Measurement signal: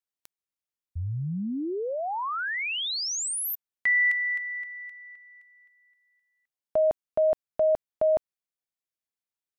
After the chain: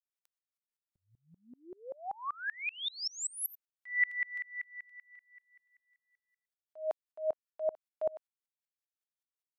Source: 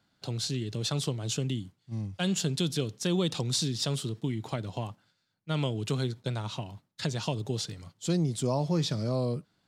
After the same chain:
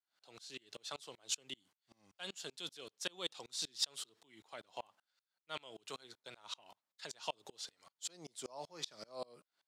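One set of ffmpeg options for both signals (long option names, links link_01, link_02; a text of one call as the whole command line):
ffmpeg -i in.wav -af "highpass=710,aeval=exprs='val(0)*pow(10,-31*if(lt(mod(-5.2*n/s,1),2*abs(-5.2)/1000),1-mod(-5.2*n/s,1)/(2*abs(-5.2)/1000),(mod(-5.2*n/s,1)-2*abs(-5.2)/1000)/(1-2*abs(-5.2)/1000))/20)':channel_layout=same" out.wav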